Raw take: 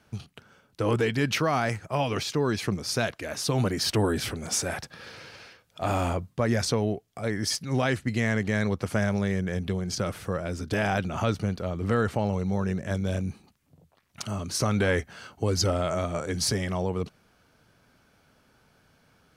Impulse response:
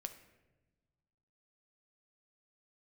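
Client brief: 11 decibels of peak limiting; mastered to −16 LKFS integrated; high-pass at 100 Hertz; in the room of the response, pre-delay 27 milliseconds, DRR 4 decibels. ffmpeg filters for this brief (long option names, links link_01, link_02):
-filter_complex "[0:a]highpass=100,alimiter=limit=-22dB:level=0:latency=1,asplit=2[link_01][link_02];[1:a]atrim=start_sample=2205,adelay=27[link_03];[link_02][link_03]afir=irnorm=-1:irlink=0,volume=-1dB[link_04];[link_01][link_04]amix=inputs=2:normalize=0,volume=15dB"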